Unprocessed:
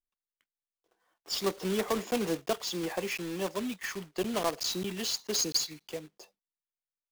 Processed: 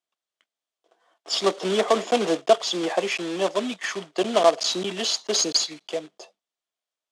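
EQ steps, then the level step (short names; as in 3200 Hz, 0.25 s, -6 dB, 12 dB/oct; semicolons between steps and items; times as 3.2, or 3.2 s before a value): speaker cabinet 290–8600 Hz, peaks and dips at 660 Hz +9 dB, 1200 Hz +3 dB, 3300 Hz +6 dB; low shelf 500 Hz +3.5 dB; +6.5 dB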